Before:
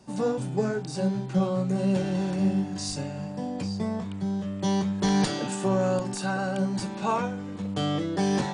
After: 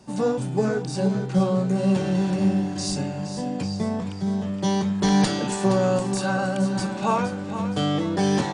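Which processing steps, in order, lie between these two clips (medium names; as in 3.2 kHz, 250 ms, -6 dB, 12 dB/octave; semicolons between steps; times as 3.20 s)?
feedback delay 469 ms, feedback 41%, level -10.5 dB; trim +3.5 dB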